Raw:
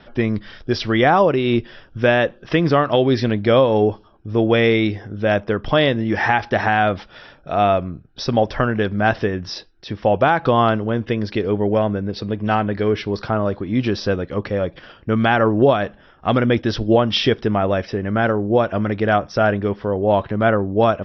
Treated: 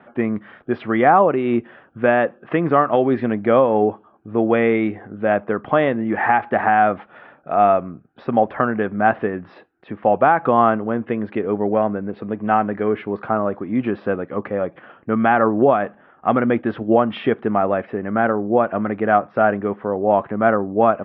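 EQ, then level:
high-frequency loss of the air 150 metres
loudspeaker in its box 180–2,400 Hz, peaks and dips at 230 Hz +3 dB, 760 Hz +5 dB, 1,200 Hz +5 dB
−1.0 dB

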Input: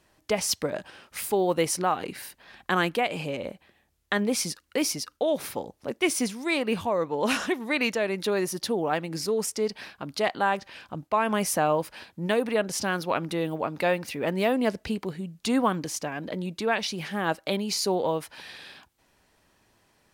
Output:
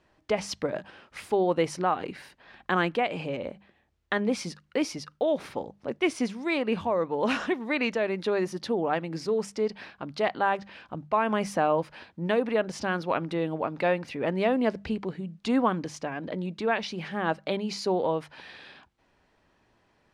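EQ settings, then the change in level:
high-frequency loss of the air 54 metres
high-shelf EQ 5,000 Hz −11 dB
mains-hum notches 50/100/150/200 Hz
0.0 dB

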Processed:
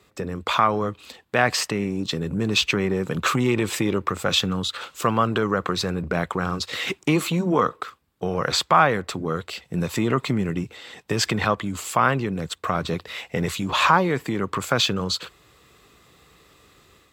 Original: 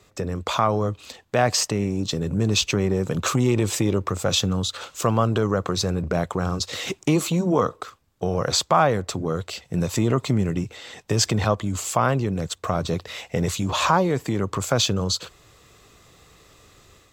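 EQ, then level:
high-pass filter 54 Hz
dynamic equaliser 1,900 Hz, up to +7 dB, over −38 dBFS, Q 0.8
graphic EQ with 15 bands 100 Hz −7 dB, 630 Hz −4 dB, 6,300 Hz −7 dB
0.0 dB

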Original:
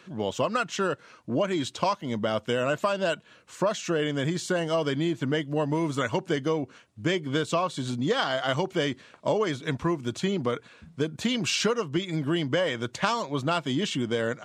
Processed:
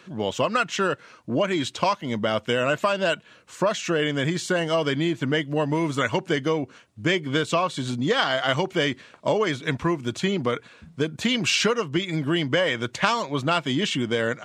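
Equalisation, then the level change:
dynamic equaliser 2,200 Hz, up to +5 dB, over −44 dBFS, Q 1.2
+2.5 dB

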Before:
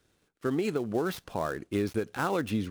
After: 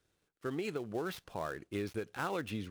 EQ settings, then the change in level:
dynamic equaliser 2,600 Hz, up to +4 dB, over −46 dBFS, Q 0.96
parametric band 240 Hz −4 dB 0.53 octaves
−7.5 dB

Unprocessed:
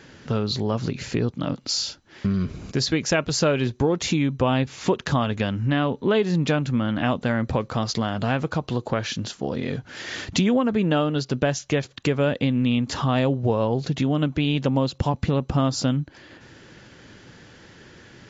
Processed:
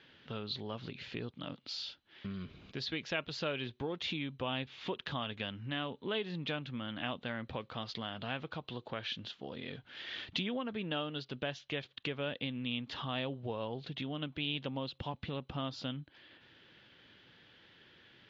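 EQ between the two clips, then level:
resonant band-pass 3,400 Hz, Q 3
high-frequency loss of the air 120 metres
spectral tilt −4.5 dB per octave
+5.5 dB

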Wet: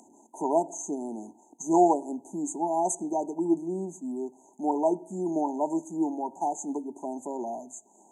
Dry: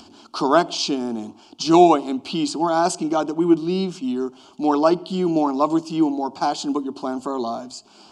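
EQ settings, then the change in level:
high-pass filter 180 Hz 12 dB per octave
linear-phase brick-wall band-stop 1,000–6,100 Hz
spectral tilt +1.5 dB per octave
−6.0 dB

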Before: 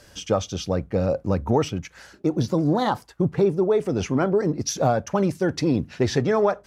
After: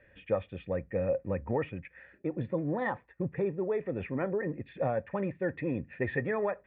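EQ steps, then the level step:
dynamic equaliser 1,000 Hz, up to +7 dB, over −39 dBFS, Q 1.9
formant resonators in series e
parametric band 530 Hz −13.5 dB 1.1 octaves
+9.0 dB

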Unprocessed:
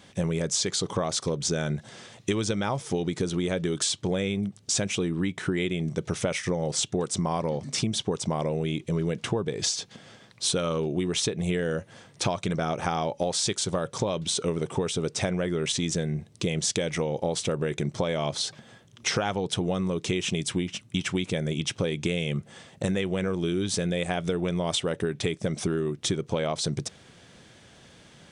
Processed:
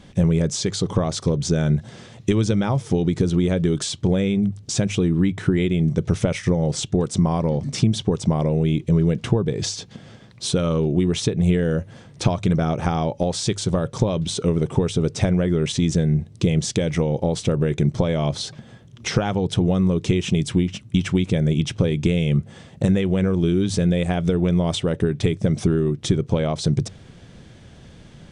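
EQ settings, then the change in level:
spectral tilt −4 dB per octave
high-shelf EQ 2,300 Hz +11 dB
mains-hum notches 50/100 Hz
0.0 dB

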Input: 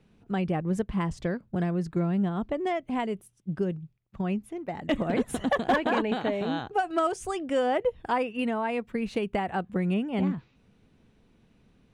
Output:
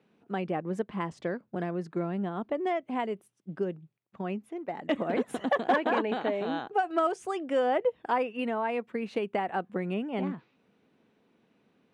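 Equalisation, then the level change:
high-pass filter 270 Hz 12 dB per octave
high-shelf EQ 4,600 Hz −11.5 dB
0.0 dB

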